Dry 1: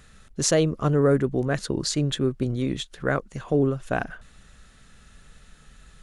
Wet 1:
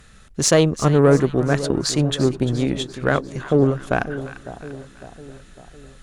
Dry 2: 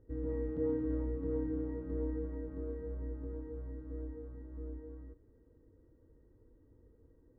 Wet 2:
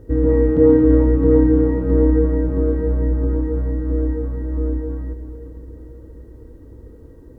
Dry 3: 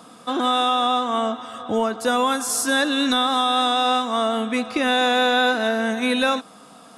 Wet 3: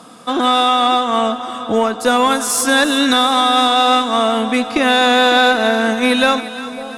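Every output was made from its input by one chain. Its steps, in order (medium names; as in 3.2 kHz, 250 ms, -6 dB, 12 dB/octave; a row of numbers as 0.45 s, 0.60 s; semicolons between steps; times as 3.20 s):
Chebyshev shaper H 4 -22 dB, 6 -33 dB, 7 -32 dB, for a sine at -7 dBFS; two-band feedback delay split 1 kHz, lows 554 ms, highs 346 ms, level -13.5 dB; peak normalisation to -1.5 dBFS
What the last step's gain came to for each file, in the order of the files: +5.5 dB, +23.5 dB, +6.5 dB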